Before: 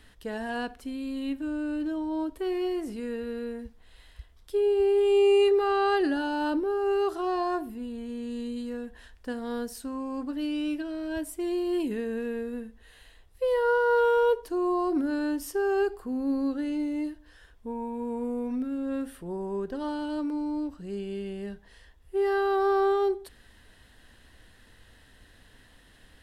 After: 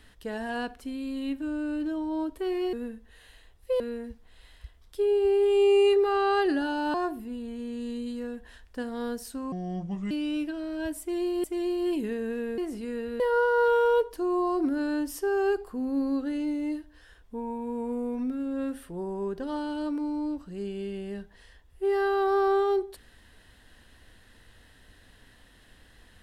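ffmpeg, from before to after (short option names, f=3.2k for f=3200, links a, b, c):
-filter_complex "[0:a]asplit=9[a][b][c][d][e][f][g][h][i];[a]atrim=end=2.732[j];[b]atrim=start=12.448:end=13.522[k];[c]atrim=start=3.348:end=6.492[l];[d]atrim=start=7.438:end=10.024[m];[e]atrim=start=10.02:end=10.42,asetpts=PTS-STARTPTS,asetrate=29988,aresample=44100,atrim=end_sample=25941,asetpts=PTS-STARTPTS[n];[f]atrim=start=10.416:end=11.752[o];[g]atrim=start=11.308:end=12.452[p];[h]atrim=start=2.728:end=3.352[q];[i]atrim=start=13.518[r];[j][k]acrossfade=d=0.004:c1=hsin:c2=hsin[s];[s][l]acrossfade=d=0.004:c1=hsin:c2=hsin[t];[t][m]acrossfade=d=0.004:c1=hsin:c2=hsin[u];[u][n]acrossfade=d=0.004:c1=hsin:c2=hsin[v];[v][o]acrossfade=d=0.004:c1=hsin:c2=hsin[w];[w][p]acrossfade=d=0.004:c1=hsin:c2=hsin[x];[x][q]acrossfade=d=0.004:c1=hsin:c2=hsin[y];[y][r]acrossfade=d=0.004:c1=hsin:c2=hsin"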